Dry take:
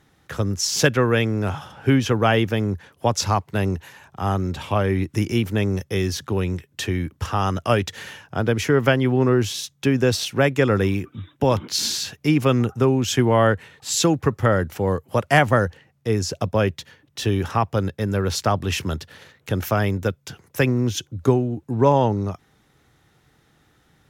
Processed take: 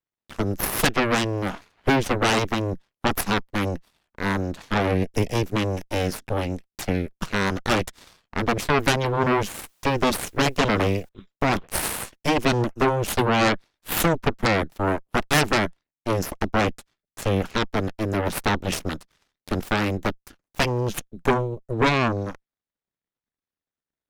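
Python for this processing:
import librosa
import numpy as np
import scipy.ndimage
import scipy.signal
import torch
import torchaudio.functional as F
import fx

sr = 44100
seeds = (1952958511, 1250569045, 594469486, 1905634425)

y = fx.cheby_harmonics(x, sr, harmonics=(7, 8), levels_db=(-17, -7), full_scale_db=-3.5)
y = fx.quant_dither(y, sr, seeds[0], bits=10, dither='triangular', at=(9.25, 11.09))
y = y * 10.0 ** (-6.5 / 20.0)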